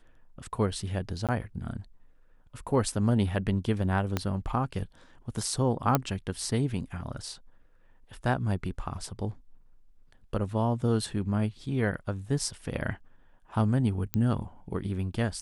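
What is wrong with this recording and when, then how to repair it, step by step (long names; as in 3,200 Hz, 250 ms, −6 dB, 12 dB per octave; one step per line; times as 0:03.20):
0:01.27–0:01.29: drop-out 17 ms
0:04.17: click −13 dBFS
0:05.95: click −8 dBFS
0:14.14: click −13 dBFS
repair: click removal
repair the gap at 0:01.27, 17 ms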